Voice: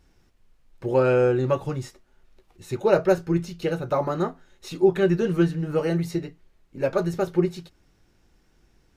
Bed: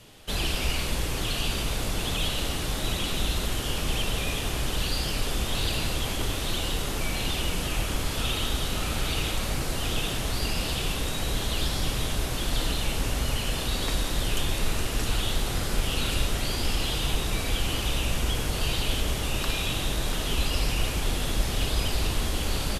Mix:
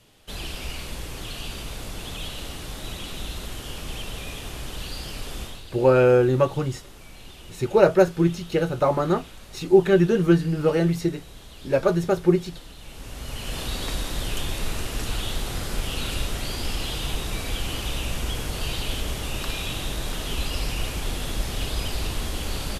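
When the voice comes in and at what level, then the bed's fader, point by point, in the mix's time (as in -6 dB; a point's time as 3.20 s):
4.90 s, +3.0 dB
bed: 5.44 s -6 dB
5.64 s -16.5 dB
12.76 s -16.5 dB
13.59 s -1.5 dB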